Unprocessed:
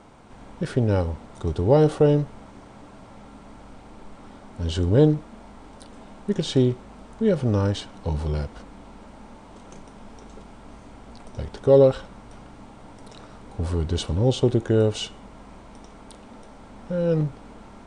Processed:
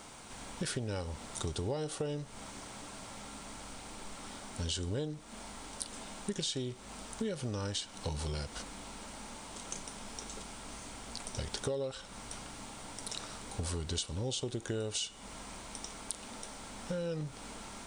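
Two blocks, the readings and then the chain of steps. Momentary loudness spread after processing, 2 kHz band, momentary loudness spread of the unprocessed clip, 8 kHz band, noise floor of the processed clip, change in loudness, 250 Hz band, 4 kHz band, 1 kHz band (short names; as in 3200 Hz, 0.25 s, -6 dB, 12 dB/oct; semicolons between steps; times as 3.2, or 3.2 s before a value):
10 LU, -5.0 dB, 16 LU, +4.5 dB, -51 dBFS, -17.5 dB, -16.0 dB, -3.0 dB, -9.5 dB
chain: pre-emphasis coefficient 0.9; compressor 16:1, threshold -47 dBFS, peak gain reduction 19.5 dB; gain +14.5 dB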